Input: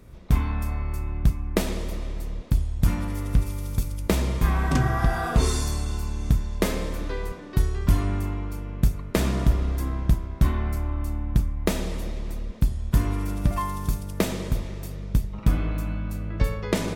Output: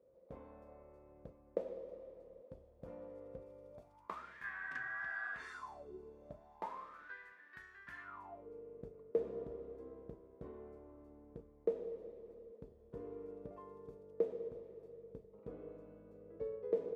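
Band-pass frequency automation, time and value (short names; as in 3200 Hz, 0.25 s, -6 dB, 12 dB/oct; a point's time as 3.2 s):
band-pass, Q 13
3.69 s 520 Hz
4.36 s 1700 Hz
5.52 s 1700 Hz
5.93 s 370 Hz
7.17 s 1700 Hz
8.02 s 1700 Hz
8.47 s 460 Hz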